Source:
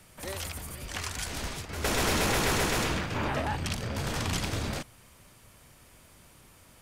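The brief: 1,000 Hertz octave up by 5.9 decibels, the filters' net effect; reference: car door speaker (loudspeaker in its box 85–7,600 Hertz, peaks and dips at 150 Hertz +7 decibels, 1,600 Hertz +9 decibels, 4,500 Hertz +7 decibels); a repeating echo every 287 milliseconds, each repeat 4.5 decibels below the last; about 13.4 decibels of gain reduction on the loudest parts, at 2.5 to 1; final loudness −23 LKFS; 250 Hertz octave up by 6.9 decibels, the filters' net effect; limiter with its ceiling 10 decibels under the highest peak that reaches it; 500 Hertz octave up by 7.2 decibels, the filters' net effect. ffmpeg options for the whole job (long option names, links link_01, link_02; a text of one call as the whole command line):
ffmpeg -i in.wav -af "equalizer=frequency=250:width_type=o:gain=6,equalizer=frequency=500:width_type=o:gain=6,equalizer=frequency=1000:width_type=o:gain=4,acompressor=threshold=-41dB:ratio=2.5,alimiter=level_in=12dB:limit=-24dB:level=0:latency=1,volume=-12dB,highpass=85,equalizer=frequency=150:width_type=q:width=4:gain=7,equalizer=frequency=1600:width_type=q:width=4:gain=9,equalizer=frequency=4500:width_type=q:width=4:gain=7,lowpass=frequency=7600:width=0.5412,lowpass=frequency=7600:width=1.3066,aecho=1:1:287|574|861|1148|1435|1722|2009|2296|2583:0.596|0.357|0.214|0.129|0.0772|0.0463|0.0278|0.0167|0.01,volume=19dB" out.wav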